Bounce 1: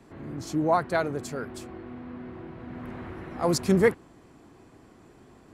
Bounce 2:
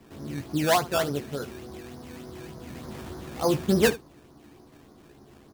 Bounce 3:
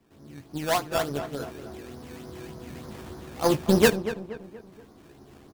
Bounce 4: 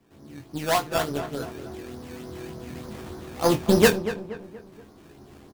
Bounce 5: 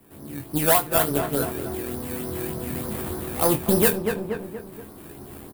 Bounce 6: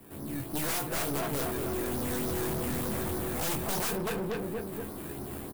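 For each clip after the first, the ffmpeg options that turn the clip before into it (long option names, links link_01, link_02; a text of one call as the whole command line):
ffmpeg -i in.wav -filter_complex "[0:a]lowpass=1400,acrusher=samples=15:mix=1:aa=0.000001:lfo=1:lforange=15:lforate=3.4,asplit=2[link_01][link_02];[link_02]aecho=0:1:14|74:0.501|0.133[link_03];[link_01][link_03]amix=inputs=2:normalize=0" out.wav
ffmpeg -i in.wav -filter_complex "[0:a]aeval=exprs='0.355*(cos(1*acos(clip(val(0)/0.355,-1,1)))-cos(1*PI/2))+0.0251*(cos(7*acos(clip(val(0)/0.355,-1,1)))-cos(7*PI/2))':channel_layout=same,asplit=2[link_01][link_02];[link_02]adelay=237,lowpass=frequency=2100:poles=1,volume=-11.5dB,asplit=2[link_03][link_04];[link_04]adelay=237,lowpass=frequency=2100:poles=1,volume=0.43,asplit=2[link_05][link_06];[link_06]adelay=237,lowpass=frequency=2100:poles=1,volume=0.43,asplit=2[link_07][link_08];[link_08]adelay=237,lowpass=frequency=2100:poles=1,volume=0.43[link_09];[link_01][link_03][link_05][link_07][link_09]amix=inputs=5:normalize=0,dynaudnorm=framelen=300:gausssize=7:maxgain=14dB,volume=-5.5dB" out.wav
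ffmpeg -i in.wav -filter_complex "[0:a]asplit=2[link_01][link_02];[link_02]adelay=24,volume=-8.5dB[link_03];[link_01][link_03]amix=inputs=2:normalize=0,volume=1.5dB" out.wav
ffmpeg -i in.wav -af "highshelf=frequency=5300:gain=-6.5,alimiter=limit=-17dB:level=0:latency=1:release=433,aexciter=amount=10.3:drive=2.5:freq=8500,volume=7dB" out.wav
ffmpeg -i in.wav -af "dynaudnorm=framelen=270:gausssize=7:maxgain=11.5dB,aeval=exprs='(mod(5.62*val(0)+1,2)-1)/5.62':channel_layout=same,aeval=exprs='(tanh(44.7*val(0)+0.3)-tanh(0.3))/44.7':channel_layout=same,volume=3dB" out.wav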